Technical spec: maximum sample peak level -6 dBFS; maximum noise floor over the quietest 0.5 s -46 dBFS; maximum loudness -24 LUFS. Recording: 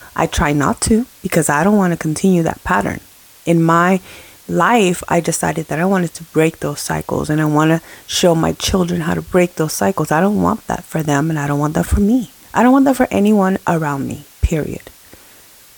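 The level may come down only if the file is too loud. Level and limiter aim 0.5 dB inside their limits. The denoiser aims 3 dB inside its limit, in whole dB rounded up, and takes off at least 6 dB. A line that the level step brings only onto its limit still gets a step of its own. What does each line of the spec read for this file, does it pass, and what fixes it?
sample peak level -2.0 dBFS: fail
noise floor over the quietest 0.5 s -44 dBFS: fail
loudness -16.0 LUFS: fail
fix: trim -8.5 dB

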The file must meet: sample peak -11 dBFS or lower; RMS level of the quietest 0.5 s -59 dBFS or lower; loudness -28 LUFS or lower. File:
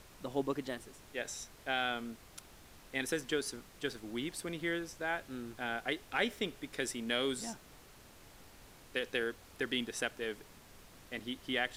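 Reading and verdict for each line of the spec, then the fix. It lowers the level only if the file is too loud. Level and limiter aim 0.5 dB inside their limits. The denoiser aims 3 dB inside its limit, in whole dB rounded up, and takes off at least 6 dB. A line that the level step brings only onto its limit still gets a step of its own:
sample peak -17.0 dBFS: pass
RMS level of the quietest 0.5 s -57 dBFS: fail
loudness -38.0 LUFS: pass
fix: noise reduction 6 dB, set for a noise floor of -57 dBFS

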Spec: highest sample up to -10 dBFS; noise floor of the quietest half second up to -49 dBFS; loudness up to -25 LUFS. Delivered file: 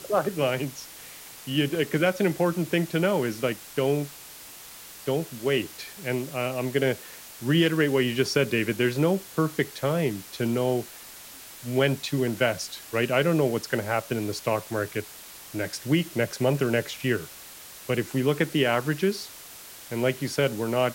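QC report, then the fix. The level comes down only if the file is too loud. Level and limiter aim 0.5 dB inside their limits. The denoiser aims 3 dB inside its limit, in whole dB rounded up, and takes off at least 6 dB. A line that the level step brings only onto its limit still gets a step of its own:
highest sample -8.5 dBFS: fail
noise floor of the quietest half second -45 dBFS: fail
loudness -26.5 LUFS: pass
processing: noise reduction 7 dB, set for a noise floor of -45 dBFS; peak limiter -10.5 dBFS

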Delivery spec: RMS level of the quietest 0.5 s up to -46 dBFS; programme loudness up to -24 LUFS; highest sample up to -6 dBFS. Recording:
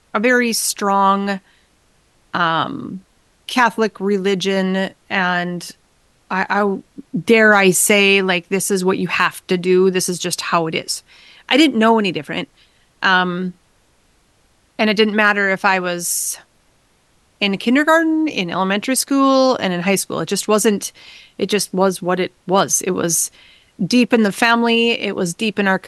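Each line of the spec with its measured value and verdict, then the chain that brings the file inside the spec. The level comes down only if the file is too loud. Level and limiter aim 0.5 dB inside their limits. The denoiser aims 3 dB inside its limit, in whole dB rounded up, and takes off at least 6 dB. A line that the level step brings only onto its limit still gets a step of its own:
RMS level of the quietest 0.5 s -58 dBFS: pass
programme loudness -16.5 LUFS: fail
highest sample -2.0 dBFS: fail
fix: trim -8 dB

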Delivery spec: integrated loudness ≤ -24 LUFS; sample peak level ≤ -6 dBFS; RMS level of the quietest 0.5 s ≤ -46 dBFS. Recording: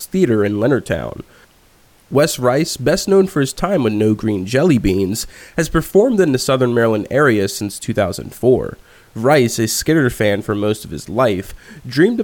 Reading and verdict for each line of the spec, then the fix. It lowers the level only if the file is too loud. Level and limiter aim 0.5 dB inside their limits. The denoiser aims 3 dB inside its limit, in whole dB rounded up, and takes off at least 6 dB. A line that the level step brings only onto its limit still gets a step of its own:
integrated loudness -16.0 LUFS: fail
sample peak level -2.0 dBFS: fail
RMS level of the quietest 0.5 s -51 dBFS: pass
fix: trim -8.5 dB

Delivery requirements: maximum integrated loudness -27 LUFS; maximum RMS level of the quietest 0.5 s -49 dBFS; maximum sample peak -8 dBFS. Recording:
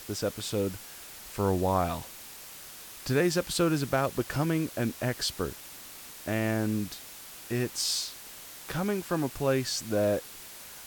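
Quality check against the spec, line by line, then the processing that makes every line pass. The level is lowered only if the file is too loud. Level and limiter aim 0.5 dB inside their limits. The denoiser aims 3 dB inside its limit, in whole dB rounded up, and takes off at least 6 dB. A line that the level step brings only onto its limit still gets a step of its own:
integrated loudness -30.0 LUFS: pass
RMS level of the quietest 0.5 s -46 dBFS: fail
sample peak -13.5 dBFS: pass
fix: noise reduction 6 dB, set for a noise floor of -46 dBFS

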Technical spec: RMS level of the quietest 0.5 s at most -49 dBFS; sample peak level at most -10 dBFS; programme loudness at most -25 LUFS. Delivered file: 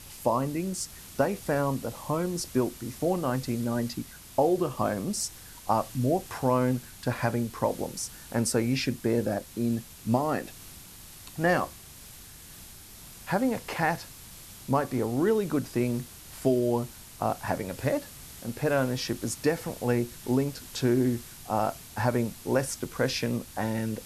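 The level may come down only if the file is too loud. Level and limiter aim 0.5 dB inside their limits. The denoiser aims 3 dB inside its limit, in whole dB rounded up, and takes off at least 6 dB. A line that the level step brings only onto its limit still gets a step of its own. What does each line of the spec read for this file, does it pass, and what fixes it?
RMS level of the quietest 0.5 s -47 dBFS: fail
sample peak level -10.5 dBFS: pass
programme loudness -29.0 LUFS: pass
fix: noise reduction 6 dB, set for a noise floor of -47 dBFS

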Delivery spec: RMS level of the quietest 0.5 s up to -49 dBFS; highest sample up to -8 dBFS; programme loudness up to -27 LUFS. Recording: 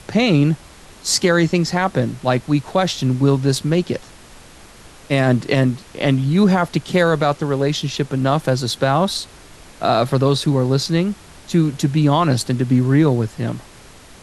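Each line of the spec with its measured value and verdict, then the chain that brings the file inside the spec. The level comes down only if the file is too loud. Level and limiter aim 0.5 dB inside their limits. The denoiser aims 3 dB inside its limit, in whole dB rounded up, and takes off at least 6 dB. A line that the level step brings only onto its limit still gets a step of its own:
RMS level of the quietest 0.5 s -42 dBFS: fail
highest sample -4.5 dBFS: fail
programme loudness -18.0 LUFS: fail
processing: trim -9.5 dB

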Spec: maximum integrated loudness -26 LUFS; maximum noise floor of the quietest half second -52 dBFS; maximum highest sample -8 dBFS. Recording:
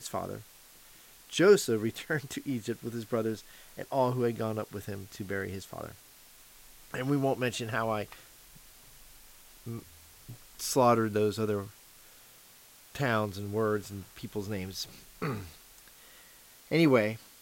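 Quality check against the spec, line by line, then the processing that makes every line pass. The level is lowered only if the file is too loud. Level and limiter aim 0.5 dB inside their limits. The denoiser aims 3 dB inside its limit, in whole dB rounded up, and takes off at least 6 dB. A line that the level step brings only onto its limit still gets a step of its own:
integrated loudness -31.0 LUFS: pass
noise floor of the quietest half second -56 dBFS: pass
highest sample -10.5 dBFS: pass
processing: none needed

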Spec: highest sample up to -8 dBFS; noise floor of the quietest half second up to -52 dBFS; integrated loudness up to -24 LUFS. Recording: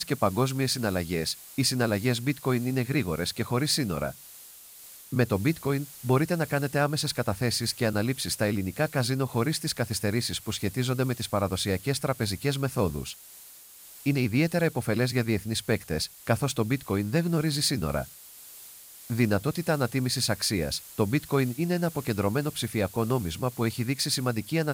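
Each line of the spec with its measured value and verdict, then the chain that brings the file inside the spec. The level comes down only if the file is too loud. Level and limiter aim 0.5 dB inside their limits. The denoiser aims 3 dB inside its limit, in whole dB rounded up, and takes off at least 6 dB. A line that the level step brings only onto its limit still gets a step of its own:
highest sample -10.5 dBFS: pass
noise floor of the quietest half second -49 dBFS: fail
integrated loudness -27.5 LUFS: pass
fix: noise reduction 6 dB, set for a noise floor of -49 dBFS

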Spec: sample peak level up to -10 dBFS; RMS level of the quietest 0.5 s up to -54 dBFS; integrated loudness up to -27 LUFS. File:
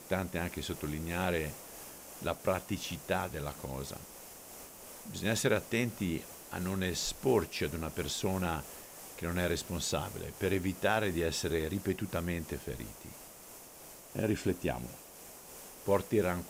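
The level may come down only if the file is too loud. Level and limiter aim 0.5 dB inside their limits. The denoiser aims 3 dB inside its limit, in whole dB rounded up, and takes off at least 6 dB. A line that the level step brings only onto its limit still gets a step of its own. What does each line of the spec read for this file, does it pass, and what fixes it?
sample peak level -17.0 dBFS: pass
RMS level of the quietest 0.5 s -52 dBFS: fail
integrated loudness -34.5 LUFS: pass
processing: noise reduction 6 dB, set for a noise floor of -52 dBFS

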